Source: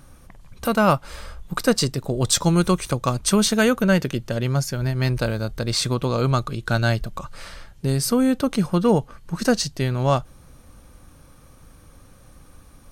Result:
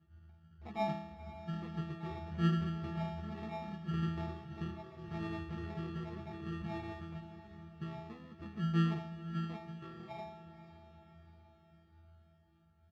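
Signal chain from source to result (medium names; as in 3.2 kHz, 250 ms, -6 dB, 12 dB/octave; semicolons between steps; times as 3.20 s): median filter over 9 samples; Doppler pass-by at 4.33 s, 10 m/s, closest 6.4 m; high-pass 69 Hz 24 dB/octave; band-stop 1.6 kHz, Q 8.7; compressor with a negative ratio -28 dBFS, ratio -0.5; peak limiter -27 dBFS, peak gain reduction 11.5 dB; pitch-class resonator E, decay 0.75 s; sample-and-hold 29×; distance through air 250 m; doubling 14 ms -6.5 dB; harmony voices +5 st -18 dB; echo that smears into a reverb 483 ms, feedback 53%, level -13 dB; trim +16.5 dB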